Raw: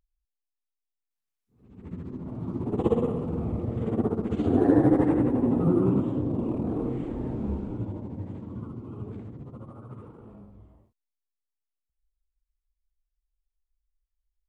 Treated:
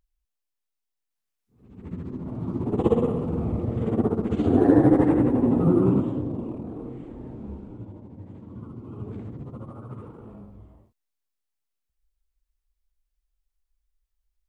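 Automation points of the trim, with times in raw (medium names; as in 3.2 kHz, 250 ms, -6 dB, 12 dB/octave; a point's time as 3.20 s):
5.93 s +3 dB
6.71 s -7 dB
8.12 s -7 dB
9.29 s +4 dB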